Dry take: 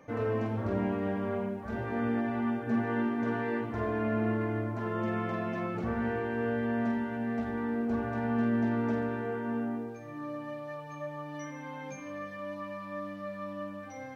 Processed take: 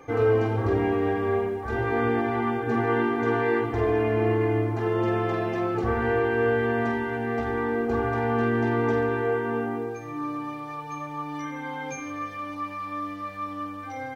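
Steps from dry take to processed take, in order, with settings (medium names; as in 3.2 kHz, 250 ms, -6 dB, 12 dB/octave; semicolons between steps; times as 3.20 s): comb 2.5 ms, depth 79%; trim +6.5 dB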